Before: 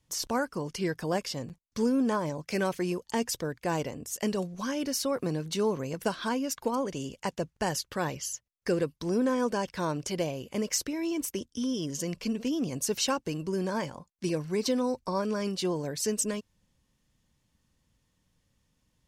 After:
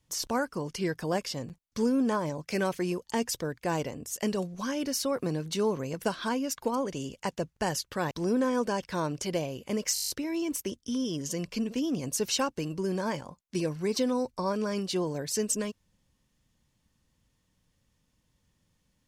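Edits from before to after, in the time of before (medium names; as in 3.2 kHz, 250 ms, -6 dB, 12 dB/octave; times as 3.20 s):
8.11–8.96 s: delete
10.79 s: stutter 0.02 s, 9 plays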